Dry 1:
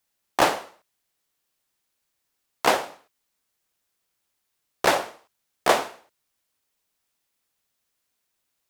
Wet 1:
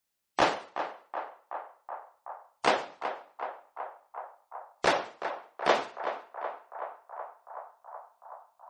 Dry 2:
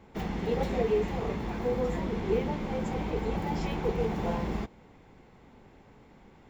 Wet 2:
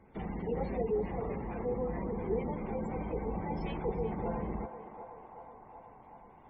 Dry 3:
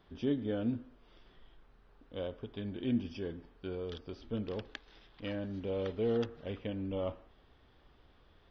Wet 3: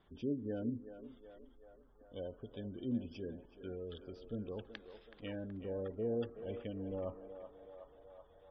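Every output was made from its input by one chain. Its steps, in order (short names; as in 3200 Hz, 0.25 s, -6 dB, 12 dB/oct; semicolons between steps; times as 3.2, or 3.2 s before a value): spectral gate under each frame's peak -25 dB strong; narrowing echo 0.375 s, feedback 82%, band-pass 900 Hz, level -8 dB; gain -5 dB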